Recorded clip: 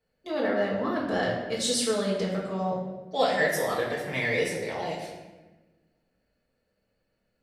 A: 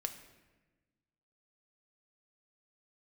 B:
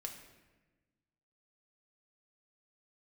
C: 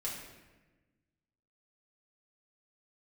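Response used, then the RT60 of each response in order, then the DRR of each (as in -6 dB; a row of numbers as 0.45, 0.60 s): C; 1.2, 1.2, 1.2 s; 6.0, 2.0, -6.5 dB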